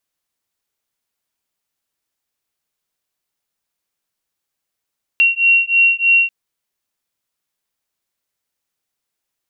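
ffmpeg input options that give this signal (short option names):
-f lavfi -i "aevalsrc='0.211*(sin(2*PI*2740*t)+sin(2*PI*2743.2*t))':d=1.09:s=44100"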